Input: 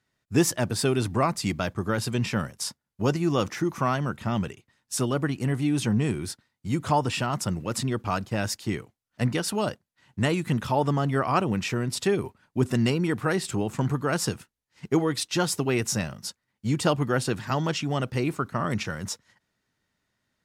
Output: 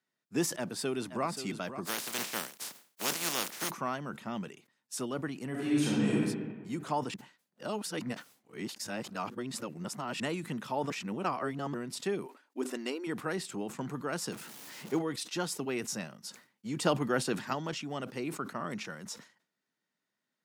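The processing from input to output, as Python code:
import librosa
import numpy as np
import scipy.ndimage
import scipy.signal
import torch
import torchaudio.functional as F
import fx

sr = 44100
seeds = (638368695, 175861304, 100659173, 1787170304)

y = fx.echo_throw(x, sr, start_s=0.55, length_s=0.72, ms=530, feedback_pct=10, wet_db=-11.0)
y = fx.spec_flatten(y, sr, power=0.24, at=(1.85, 3.69), fade=0.02)
y = fx.reverb_throw(y, sr, start_s=5.5, length_s=0.66, rt60_s=1.5, drr_db=-6.5)
y = fx.brickwall_highpass(y, sr, low_hz=240.0, at=(12.26, 13.07))
y = fx.zero_step(y, sr, step_db=-32.5, at=(14.32, 14.99))
y = fx.edit(y, sr, fx.reverse_span(start_s=7.14, length_s=3.06),
    fx.reverse_span(start_s=10.9, length_s=0.84),
    fx.clip_gain(start_s=16.76, length_s=0.77, db=4.5), tone=tone)
y = scipy.signal.sosfilt(scipy.signal.butter(4, 170.0, 'highpass', fs=sr, output='sos'), y)
y = fx.sustainer(y, sr, db_per_s=140.0)
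y = y * librosa.db_to_amplitude(-9.0)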